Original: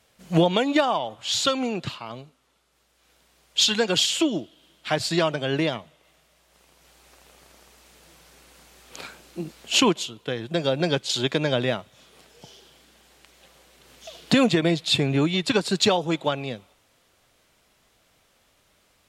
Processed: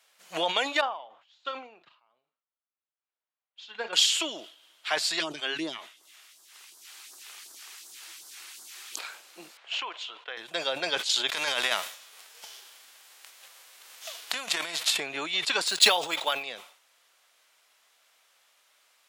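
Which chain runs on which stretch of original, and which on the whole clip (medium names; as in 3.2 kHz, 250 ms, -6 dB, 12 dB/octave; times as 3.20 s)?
0.81–3.93 s: tape spacing loss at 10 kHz 32 dB + doubling 40 ms -13.5 dB + upward expansion 2.5:1, over -38 dBFS
5.20–8.99 s: phase shifter stages 2, 2.7 Hz, lowest notch 100–2400 Hz + resonant low shelf 430 Hz +6 dB, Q 3 + tape noise reduction on one side only encoder only
9.57–10.37 s: band-pass 500–2700 Hz + compression 12:1, threshold -27 dBFS
11.31–14.96 s: formants flattened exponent 0.6 + compressor with a negative ratio -24 dBFS, ratio -0.5
15.67–16.43 s: treble shelf 4.1 kHz +10.5 dB + band-stop 5.9 kHz, Q 11 + decimation joined by straight lines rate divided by 3×
whole clip: high-pass 900 Hz 12 dB/octave; decay stretcher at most 100 dB/s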